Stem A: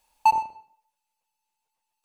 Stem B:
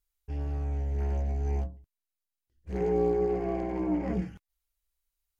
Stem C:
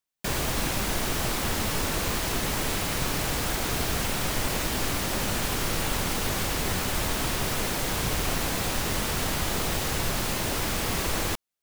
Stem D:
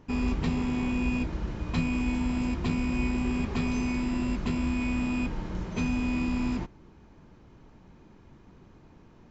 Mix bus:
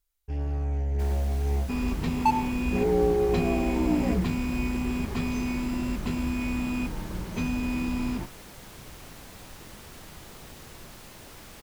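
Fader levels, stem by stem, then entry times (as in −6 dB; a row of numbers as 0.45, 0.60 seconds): −4.5, +3.0, −18.5, −0.5 decibels; 2.00, 0.00, 0.75, 1.60 seconds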